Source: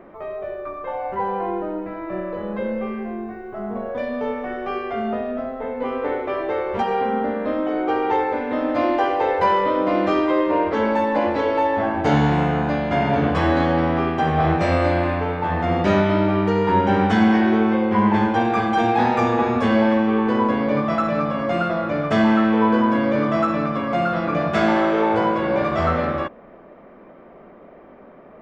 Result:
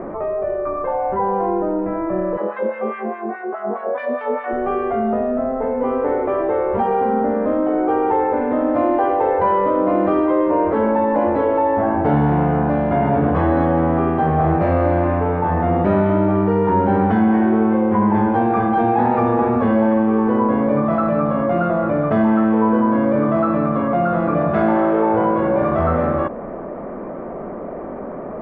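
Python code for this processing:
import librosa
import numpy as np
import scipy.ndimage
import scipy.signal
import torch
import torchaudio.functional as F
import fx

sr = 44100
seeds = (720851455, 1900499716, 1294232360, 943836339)

y = fx.filter_lfo_highpass(x, sr, shape='sine', hz=4.8, low_hz=300.0, high_hz=2000.0, q=0.99, at=(2.36, 4.51), fade=0.02)
y = scipy.signal.sosfilt(scipy.signal.butter(2, 1200.0, 'lowpass', fs=sr, output='sos'), y)
y = fx.env_flatten(y, sr, amount_pct=50)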